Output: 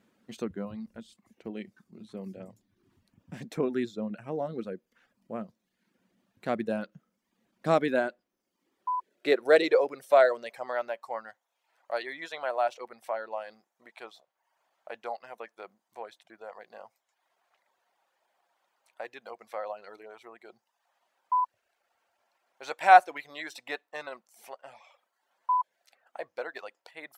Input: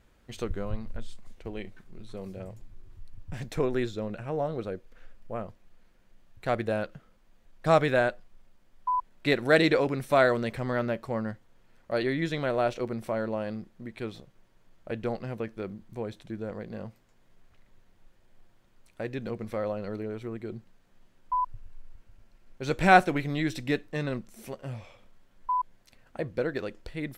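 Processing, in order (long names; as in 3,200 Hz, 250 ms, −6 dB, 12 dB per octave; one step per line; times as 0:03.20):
reverb reduction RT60 0.69 s
high-pass filter sweep 210 Hz → 770 Hz, 0:07.54–0:10.97
level −3.5 dB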